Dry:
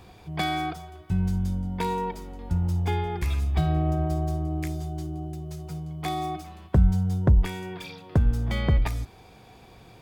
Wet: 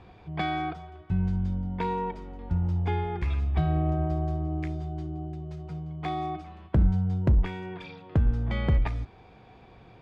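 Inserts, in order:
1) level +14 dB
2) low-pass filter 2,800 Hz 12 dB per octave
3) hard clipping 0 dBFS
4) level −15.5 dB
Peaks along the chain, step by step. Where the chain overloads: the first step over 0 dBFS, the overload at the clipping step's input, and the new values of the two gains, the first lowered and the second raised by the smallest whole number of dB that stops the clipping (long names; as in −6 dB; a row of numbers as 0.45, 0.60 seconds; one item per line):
+5.5, +5.5, 0.0, −15.5 dBFS
step 1, 5.5 dB
step 1 +8 dB, step 4 −9.5 dB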